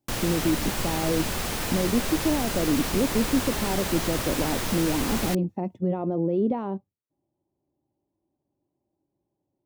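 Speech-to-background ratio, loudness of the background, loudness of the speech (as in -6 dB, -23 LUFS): 1.0 dB, -28.5 LUFS, -27.5 LUFS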